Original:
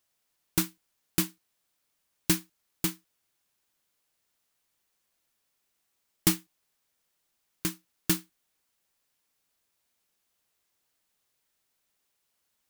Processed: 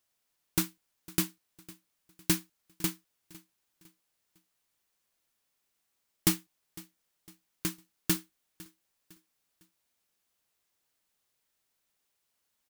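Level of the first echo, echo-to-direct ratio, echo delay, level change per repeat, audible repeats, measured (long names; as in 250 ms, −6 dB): −21.0 dB, −20.5 dB, 505 ms, −8.0 dB, 2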